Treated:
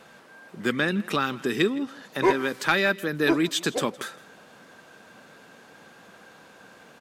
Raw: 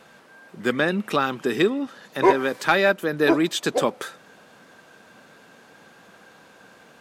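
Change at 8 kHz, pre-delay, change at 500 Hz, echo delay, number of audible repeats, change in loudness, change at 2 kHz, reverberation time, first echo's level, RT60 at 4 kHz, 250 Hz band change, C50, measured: 0.0 dB, no reverb, -5.0 dB, 163 ms, 1, -3.0 dB, -1.5 dB, no reverb, -21.0 dB, no reverb, -2.0 dB, no reverb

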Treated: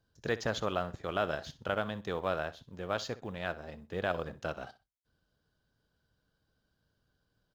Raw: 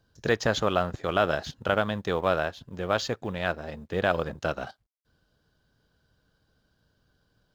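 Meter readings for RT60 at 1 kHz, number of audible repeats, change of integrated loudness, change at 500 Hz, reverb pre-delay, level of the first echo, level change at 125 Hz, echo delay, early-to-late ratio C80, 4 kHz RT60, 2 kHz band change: no reverb, 2, -8.0 dB, -8.0 dB, no reverb, -17.0 dB, -8.0 dB, 63 ms, no reverb, no reverb, -8.0 dB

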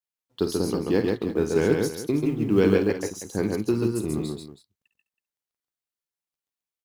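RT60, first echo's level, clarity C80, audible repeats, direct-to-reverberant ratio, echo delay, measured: no reverb, -10.5 dB, no reverb, 3, no reverb, 52 ms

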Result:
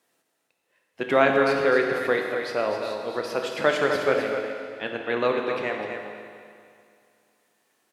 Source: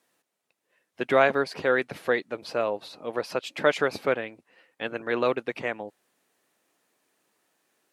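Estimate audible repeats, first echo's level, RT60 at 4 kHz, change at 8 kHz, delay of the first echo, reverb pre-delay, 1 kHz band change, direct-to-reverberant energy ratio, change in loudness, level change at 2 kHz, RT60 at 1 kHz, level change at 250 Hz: 1, -7.5 dB, 2.2 s, +2.5 dB, 254 ms, 18 ms, +2.5 dB, 0.5 dB, +2.5 dB, +2.5 dB, 2.3 s, +3.5 dB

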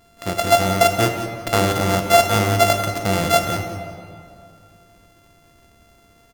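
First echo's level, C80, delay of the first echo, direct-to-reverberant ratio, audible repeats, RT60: -14.0 dB, 6.5 dB, 175 ms, 4.5 dB, 1, 2.4 s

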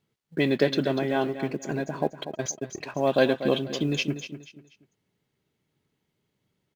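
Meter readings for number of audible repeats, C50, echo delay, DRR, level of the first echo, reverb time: 3, no reverb, 242 ms, no reverb, -11.0 dB, no reverb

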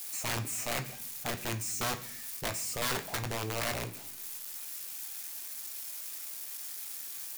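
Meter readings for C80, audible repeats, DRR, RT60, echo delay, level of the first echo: 16.5 dB, no echo, 6.0 dB, 0.65 s, no echo, no echo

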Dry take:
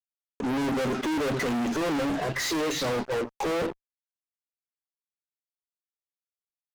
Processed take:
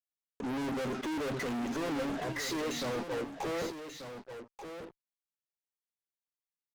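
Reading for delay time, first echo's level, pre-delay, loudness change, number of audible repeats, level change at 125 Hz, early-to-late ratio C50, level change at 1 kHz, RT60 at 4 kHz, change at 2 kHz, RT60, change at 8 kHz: 1186 ms, -9.5 dB, no reverb, -7.5 dB, 1, -7.0 dB, no reverb, -7.0 dB, no reverb, -7.0 dB, no reverb, -7.0 dB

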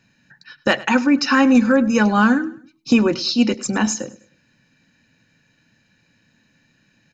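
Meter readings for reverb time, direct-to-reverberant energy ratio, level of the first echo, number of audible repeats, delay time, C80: no reverb, no reverb, -19.0 dB, 2, 102 ms, no reverb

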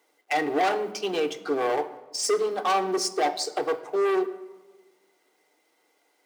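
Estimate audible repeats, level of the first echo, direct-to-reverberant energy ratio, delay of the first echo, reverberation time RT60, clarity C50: no echo, no echo, 6.5 dB, no echo, 1.3 s, 14.0 dB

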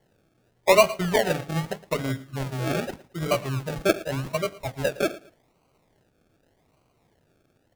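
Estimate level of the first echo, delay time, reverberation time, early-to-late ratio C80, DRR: -19.5 dB, 112 ms, no reverb, no reverb, no reverb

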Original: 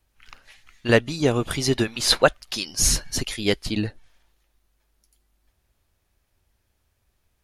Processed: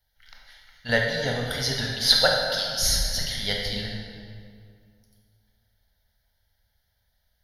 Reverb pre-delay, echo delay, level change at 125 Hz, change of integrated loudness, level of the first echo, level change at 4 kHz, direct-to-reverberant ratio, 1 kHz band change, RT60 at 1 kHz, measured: 19 ms, no echo, -4.0 dB, -1.0 dB, no echo, +3.0 dB, -1.0 dB, -2.5 dB, 2.1 s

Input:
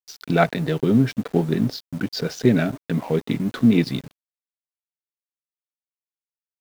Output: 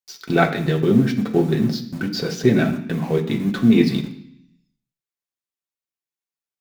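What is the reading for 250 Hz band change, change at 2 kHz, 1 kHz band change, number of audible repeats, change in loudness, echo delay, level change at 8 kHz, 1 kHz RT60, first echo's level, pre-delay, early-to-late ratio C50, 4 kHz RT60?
+2.5 dB, +3.0 dB, +1.5 dB, no echo, +2.0 dB, no echo, no reading, 0.65 s, no echo, 3 ms, 10.5 dB, 0.85 s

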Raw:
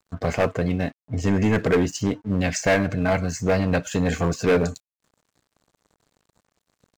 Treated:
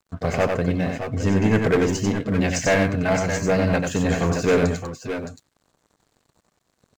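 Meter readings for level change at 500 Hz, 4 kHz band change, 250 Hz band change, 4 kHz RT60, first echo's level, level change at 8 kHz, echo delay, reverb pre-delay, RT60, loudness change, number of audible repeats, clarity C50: +1.5 dB, +2.0 dB, +1.5 dB, no reverb, -4.5 dB, +2.0 dB, 92 ms, no reverb, no reverb, +1.0 dB, 2, no reverb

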